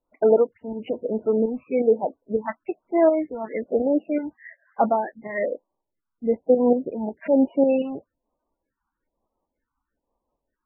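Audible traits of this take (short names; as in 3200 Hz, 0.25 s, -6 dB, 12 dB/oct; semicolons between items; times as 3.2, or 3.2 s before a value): tremolo saw up 5.5 Hz, depth 55%; phasing stages 4, 1.1 Hz, lowest notch 490–3800 Hz; MP3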